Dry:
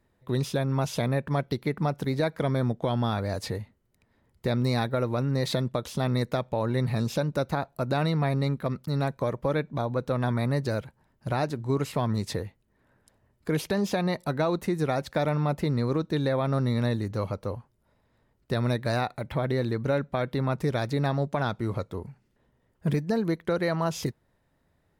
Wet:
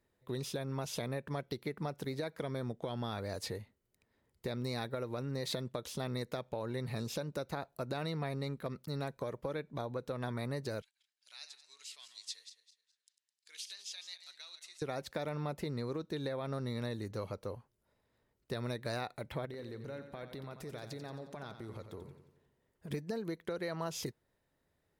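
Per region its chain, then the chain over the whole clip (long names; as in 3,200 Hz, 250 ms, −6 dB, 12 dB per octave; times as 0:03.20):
0:10.82–0:14.82: feedback delay that plays each chunk backwards 105 ms, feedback 51%, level −10.5 dB + flat-topped band-pass 5,200 Hz, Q 0.97
0:19.45–0:22.91: downward compressor 12 to 1, threshold −32 dBFS + repeating echo 89 ms, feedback 53%, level −9.5 dB
whole clip: parametric band 430 Hz +13 dB 1.6 octaves; downward compressor, threshold −17 dBFS; guitar amp tone stack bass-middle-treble 5-5-5; level +2 dB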